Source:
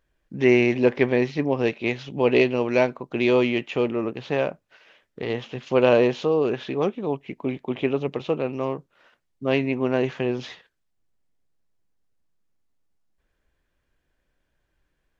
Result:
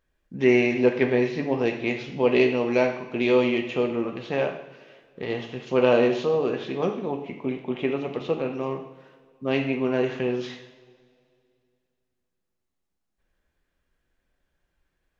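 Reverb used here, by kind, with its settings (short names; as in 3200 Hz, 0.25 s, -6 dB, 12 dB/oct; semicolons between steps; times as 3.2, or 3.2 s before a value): two-slope reverb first 0.72 s, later 2.5 s, from -18 dB, DRR 3 dB; gain -3 dB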